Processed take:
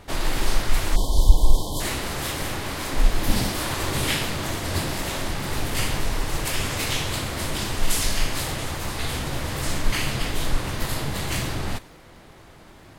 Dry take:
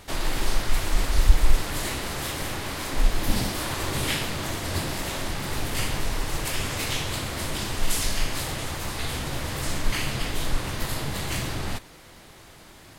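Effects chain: crackle 20/s -39 dBFS; spectral delete 0.96–1.8, 1100–3000 Hz; mismatched tape noise reduction decoder only; gain +2.5 dB

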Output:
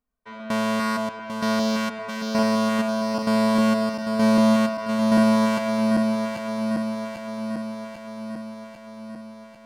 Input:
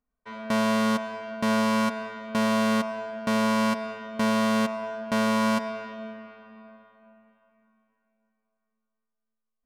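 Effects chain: regenerating reverse delay 0.398 s, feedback 78%, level -5.5 dB

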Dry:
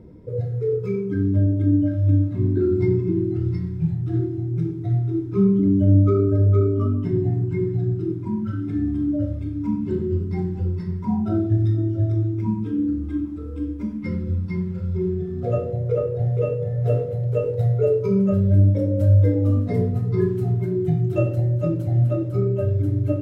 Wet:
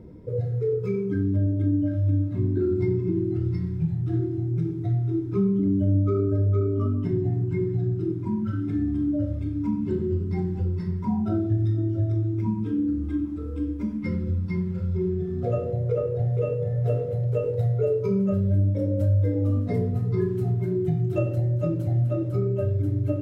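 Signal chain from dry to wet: compressor 2:1, threshold -23 dBFS, peak gain reduction 7 dB

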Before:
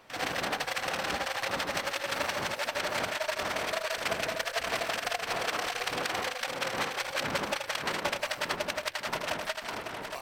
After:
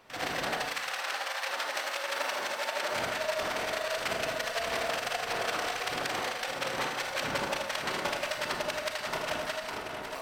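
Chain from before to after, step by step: 0.67–2.91 HPF 1000 Hz -> 290 Hz 12 dB/oct; reverb RT60 0.85 s, pre-delay 27 ms, DRR 3 dB; gain -2 dB

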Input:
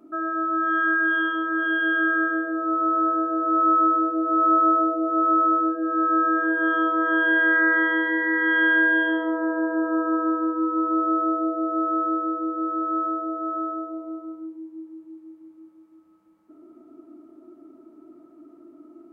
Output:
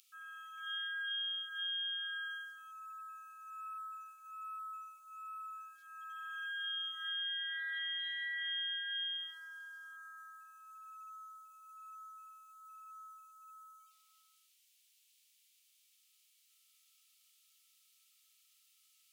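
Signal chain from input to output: steep high-pass 2900 Hz 36 dB/oct; compressor 6:1, threshold -54 dBFS, peak gain reduction 13.5 dB; gain +16.5 dB

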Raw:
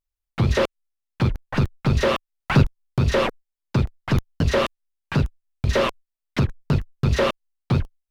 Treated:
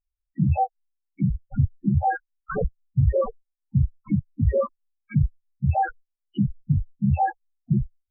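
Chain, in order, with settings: trilling pitch shifter +6 st, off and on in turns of 0.368 s; wrapped overs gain 10.5 dB; loudest bins only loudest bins 4; gain +2 dB

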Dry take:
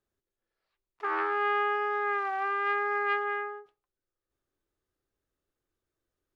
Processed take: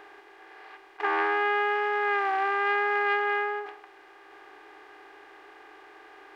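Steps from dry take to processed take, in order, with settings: per-bin compression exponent 0.4; bell 710 Hz +5.5 dB 0.22 oct; notch 1300 Hz, Q 6.1; gain +2 dB

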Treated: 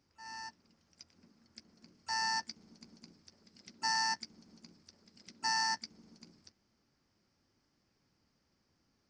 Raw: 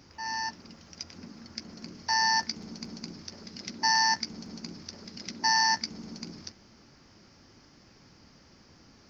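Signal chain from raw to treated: harmoniser +7 st -17 dB; upward expander 1.5:1, over -47 dBFS; gain -8 dB

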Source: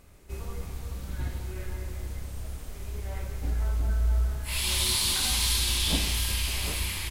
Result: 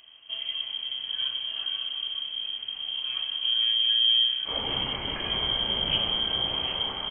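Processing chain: inverted band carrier 3200 Hz

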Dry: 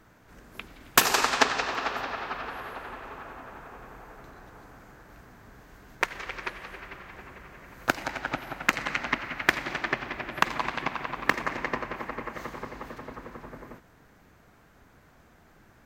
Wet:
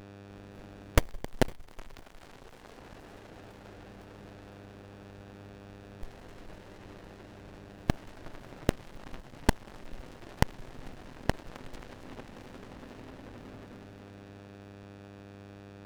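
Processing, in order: on a send: split-band echo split 1500 Hz, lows 0.366 s, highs 0.506 s, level -8 dB; on the sum: buzz 100 Hz, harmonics 23, -45 dBFS -1 dB/oct; added harmonics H 2 -8 dB, 3 -18 dB, 5 -17 dB, 8 -6 dB, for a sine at -3 dBFS; running maximum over 33 samples; gain -4.5 dB

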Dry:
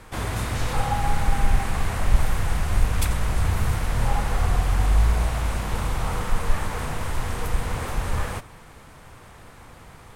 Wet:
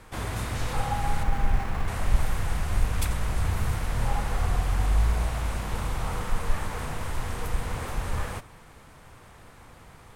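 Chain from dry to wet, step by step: 1.23–1.88 median filter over 9 samples; gain -4 dB

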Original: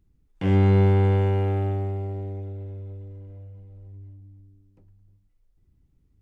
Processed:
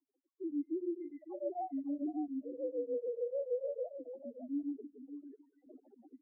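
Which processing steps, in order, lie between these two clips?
sine-wave speech; recorder AGC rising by 19 dB/s; feedback echo 0.172 s, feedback 33%, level -19.5 dB; reverse; compressor 16:1, threshold -26 dBFS, peak gain reduction 14 dB; reverse; steep high-pass 260 Hz 96 dB/oct; loudest bins only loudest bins 2; steep low-pass 1600 Hz 72 dB/oct; echo 0.552 s -10.5 dB; beating tremolo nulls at 6.8 Hz; gain -4.5 dB

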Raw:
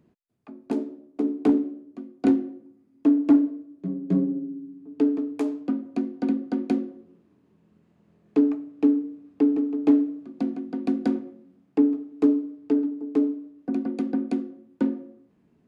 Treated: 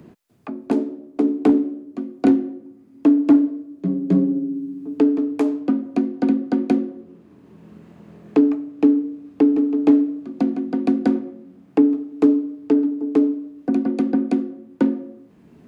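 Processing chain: three-band squash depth 40%; gain +6 dB

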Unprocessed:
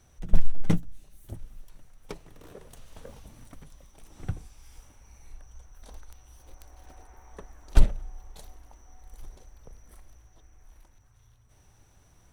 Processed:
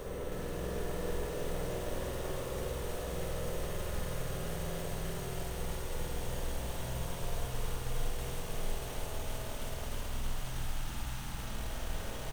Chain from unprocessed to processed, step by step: Paulstretch 48×, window 0.50 s, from 2.62; spectral delete 10.04–11.36, 360–730 Hz; on a send: echo 0.531 s -6 dB; on the sum: spring tank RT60 1.6 s, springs 48 ms, chirp 40 ms, DRR -3 dB; careless resampling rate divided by 2×, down filtered, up hold; lo-fi delay 0.32 s, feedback 80%, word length 9-bit, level -3.5 dB; gain +4.5 dB

